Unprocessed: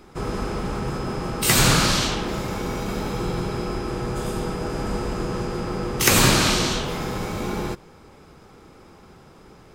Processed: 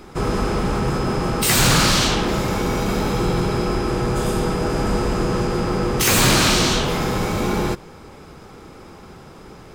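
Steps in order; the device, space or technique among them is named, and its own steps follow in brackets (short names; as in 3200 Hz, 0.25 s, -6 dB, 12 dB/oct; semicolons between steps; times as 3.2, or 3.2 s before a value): saturation between pre-emphasis and de-emphasis (high shelf 5100 Hz +8 dB; soft clip -16.5 dBFS, distortion -8 dB; high shelf 5100 Hz -8 dB); gain +7 dB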